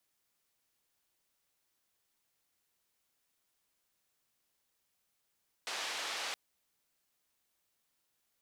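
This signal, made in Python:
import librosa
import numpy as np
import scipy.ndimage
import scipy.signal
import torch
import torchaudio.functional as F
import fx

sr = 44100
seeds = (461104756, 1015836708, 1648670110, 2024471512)

y = fx.band_noise(sr, seeds[0], length_s=0.67, low_hz=520.0, high_hz=4500.0, level_db=-39.0)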